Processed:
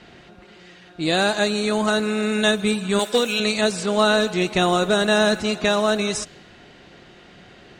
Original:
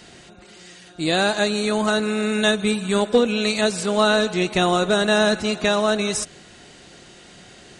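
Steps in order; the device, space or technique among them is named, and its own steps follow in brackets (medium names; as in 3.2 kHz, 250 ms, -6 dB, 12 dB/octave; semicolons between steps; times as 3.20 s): cassette deck with a dynamic noise filter (white noise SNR 32 dB; level-controlled noise filter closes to 2.9 kHz, open at -15 dBFS); 2.99–3.40 s: tilt EQ +3 dB/octave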